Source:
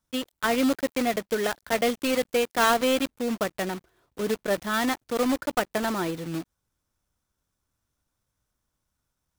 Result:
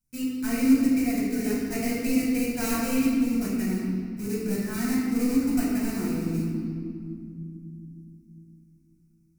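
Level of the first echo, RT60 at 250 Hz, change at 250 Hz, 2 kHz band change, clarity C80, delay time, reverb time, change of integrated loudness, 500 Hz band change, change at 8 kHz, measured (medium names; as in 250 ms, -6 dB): no echo, 4.3 s, +6.0 dB, -7.0 dB, 0.5 dB, no echo, 2.4 s, +0.5 dB, -8.0 dB, -0.5 dB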